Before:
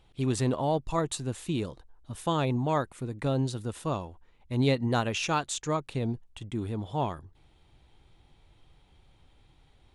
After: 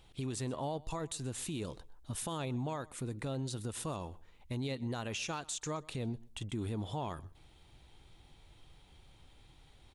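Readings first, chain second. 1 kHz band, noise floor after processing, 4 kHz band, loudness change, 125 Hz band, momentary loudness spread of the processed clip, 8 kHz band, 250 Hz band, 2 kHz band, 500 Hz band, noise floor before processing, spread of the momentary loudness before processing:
-10.5 dB, -61 dBFS, -6.5 dB, -9.0 dB, -8.5 dB, 6 LU, -3.0 dB, -9.0 dB, -9.0 dB, -10.5 dB, -62 dBFS, 9 LU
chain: high shelf 3500 Hz +7 dB; compressor, threshold -32 dBFS, peak gain reduction 12 dB; limiter -29.5 dBFS, peak gain reduction 8 dB; on a send: feedback echo 0.126 s, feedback 18%, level -22.5 dB

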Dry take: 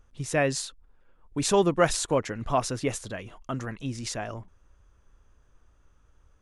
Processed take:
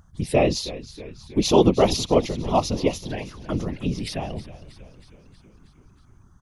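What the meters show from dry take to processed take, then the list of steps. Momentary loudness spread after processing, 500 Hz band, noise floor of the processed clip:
16 LU, +5.5 dB, -55 dBFS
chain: envelope phaser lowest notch 400 Hz, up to 1600 Hz, full sweep at -29 dBFS; whisperiser; frequency-shifting echo 0.318 s, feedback 63%, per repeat -71 Hz, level -16 dB; gain +7 dB

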